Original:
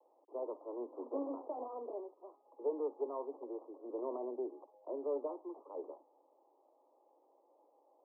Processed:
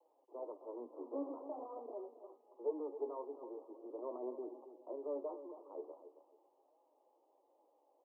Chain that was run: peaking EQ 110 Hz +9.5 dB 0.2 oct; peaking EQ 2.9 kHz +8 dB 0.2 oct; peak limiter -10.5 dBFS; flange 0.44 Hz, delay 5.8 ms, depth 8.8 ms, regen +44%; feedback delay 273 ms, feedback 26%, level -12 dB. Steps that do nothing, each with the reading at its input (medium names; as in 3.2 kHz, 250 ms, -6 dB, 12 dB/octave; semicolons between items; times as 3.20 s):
peaking EQ 110 Hz: input has nothing below 230 Hz; peaking EQ 2.9 kHz: input has nothing above 1.1 kHz; peak limiter -10.5 dBFS: peak at its input -25.0 dBFS